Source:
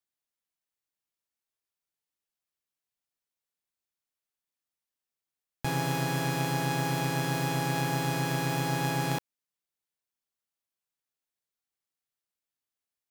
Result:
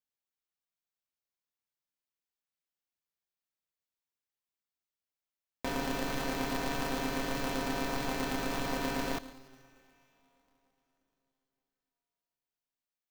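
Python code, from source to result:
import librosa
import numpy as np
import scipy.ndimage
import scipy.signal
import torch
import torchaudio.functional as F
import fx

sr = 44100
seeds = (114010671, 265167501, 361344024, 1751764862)

p1 = fx.peak_eq(x, sr, hz=10000.0, db=-9.0, octaves=0.55)
p2 = p1 + fx.echo_feedback(p1, sr, ms=144, feedback_pct=43, wet_db=-18.5, dry=0)
p3 = fx.rev_plate(p2, sr, seeds[0], rt60_s=4.0, hf_ratio=1.0, predelay_ms=0, drr_db=20.0)
p4 = p3 * np.sign(np.sin(2.0 * np.pi * 130.0 * np.arange(len(p3)) / sr))
y = F.gain(torch.from_numpy(p4), -4.5).numpy()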